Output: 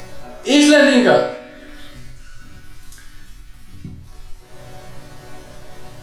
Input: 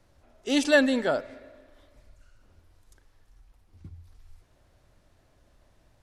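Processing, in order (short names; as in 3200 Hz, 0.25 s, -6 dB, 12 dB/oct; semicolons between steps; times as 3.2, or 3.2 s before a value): 1.36–3.87 band shelf 610 Hz -11.5 dB; upward compressor, threshold -38 dBFS; resonator bank B2 minor, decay 0.51 s; maximiser +32.5 dB; gain -1 dB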